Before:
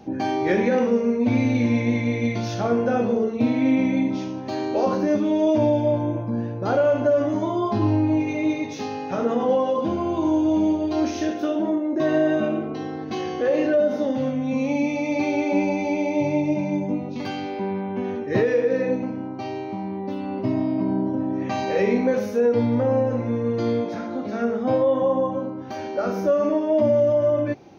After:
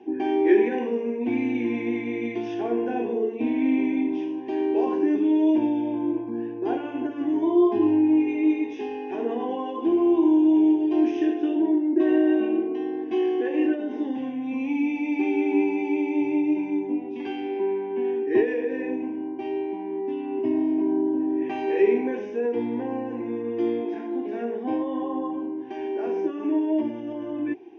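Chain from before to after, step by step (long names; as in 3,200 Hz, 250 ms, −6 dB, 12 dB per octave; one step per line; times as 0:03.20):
loudspeaker in its box 290–4,100 Hz, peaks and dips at 360 Hz +8 dB, 510 Hz −7 dB, 850 Hz −8 dB, 1,300 Hz −10 dB, 2,100 Hz −8 dB
phaser with its sweep stopped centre 860 Hz, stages 8
level +2.5 dB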